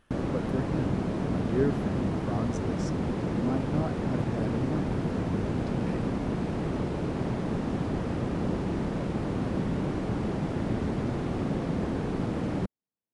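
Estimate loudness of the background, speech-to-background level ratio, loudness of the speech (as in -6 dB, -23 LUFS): -30.5 LUFS, -4.5 dB, -35.0 LUFS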